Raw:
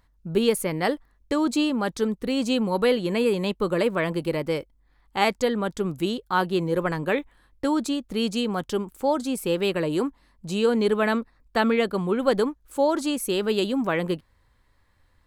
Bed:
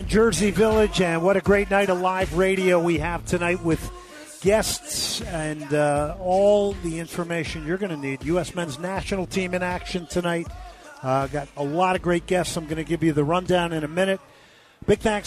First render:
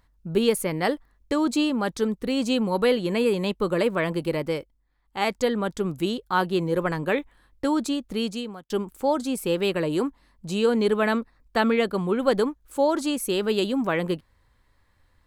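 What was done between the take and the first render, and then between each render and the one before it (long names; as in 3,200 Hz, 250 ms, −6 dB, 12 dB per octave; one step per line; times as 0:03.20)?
0:04.45–0:05.44: duck −9.5 dB, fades 0.42 s
0:08.11–0:08.70: fade out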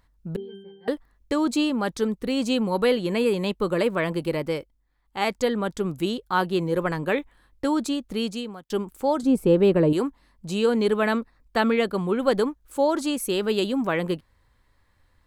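0:00.36–0:00.88: resonances in every octave G, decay 0.67 s
0:09.23–0:09.93: tilt shelving filter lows +9 dB, about 1,100 Hz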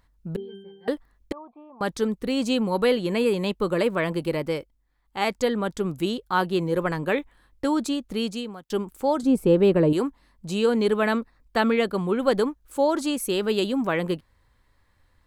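0:01.32–0:01.81: formant resonators in series a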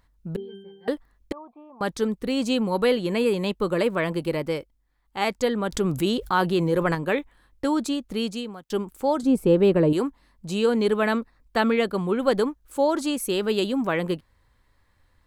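0:05.72–0:06.95: envelope flattener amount 50%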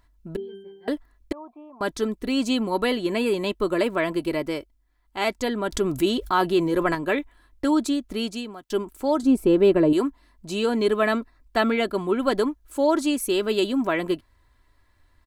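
comb filter 3 ms, depth 52%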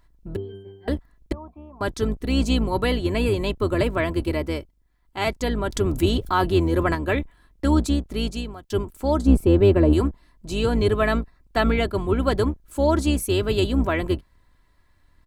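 sub-octave generator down 2 octaves, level +2 dB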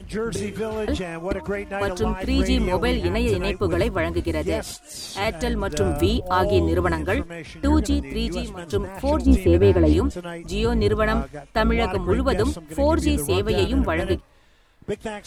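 mix in bed −9 dB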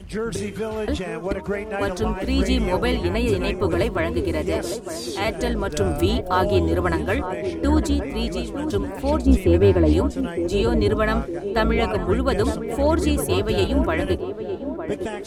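feedback echo with a band-pass in the loop 909 ms, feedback 55%, band-pass 420 Hz, level −6.5 dB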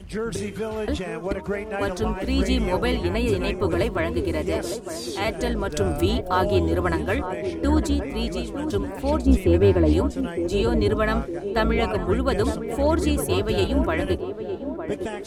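level −1.5 dB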